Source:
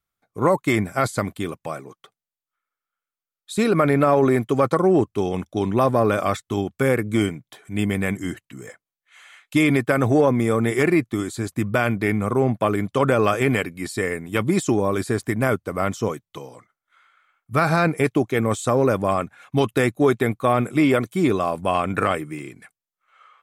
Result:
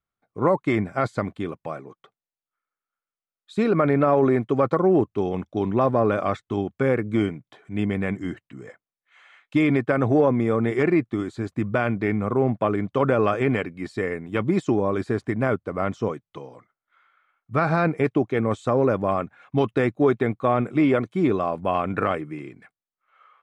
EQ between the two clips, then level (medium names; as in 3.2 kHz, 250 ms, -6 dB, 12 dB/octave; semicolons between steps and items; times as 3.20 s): tape spacing loss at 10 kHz 24 dB; bass shelf 110 Hz -5 dB; 0.0 dB